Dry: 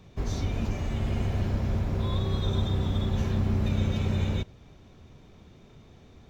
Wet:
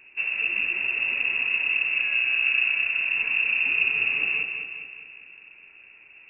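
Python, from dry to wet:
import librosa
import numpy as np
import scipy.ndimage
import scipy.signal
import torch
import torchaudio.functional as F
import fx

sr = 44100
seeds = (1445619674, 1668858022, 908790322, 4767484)

y = fx.echo_feedback(x, sr, ms=206, feedback_pct=53, wet_db=-6.5)
y = fx.freq_invert(y, sr, carrier_hz=2700)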